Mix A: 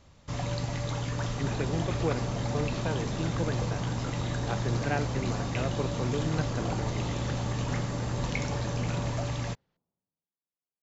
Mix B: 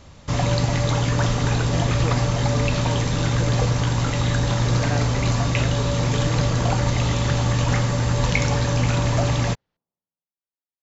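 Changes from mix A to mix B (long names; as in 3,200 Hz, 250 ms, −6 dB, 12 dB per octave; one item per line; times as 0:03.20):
first sound +11.5 dB
second sound: add low-shelf EQ 390 Hz −8 dB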